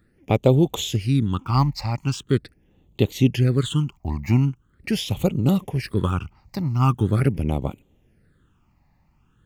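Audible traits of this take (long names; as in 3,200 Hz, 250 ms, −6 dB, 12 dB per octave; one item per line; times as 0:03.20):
phaser sweep stages 8, 0.42 Hz, lowest notch 430–1,600 Hz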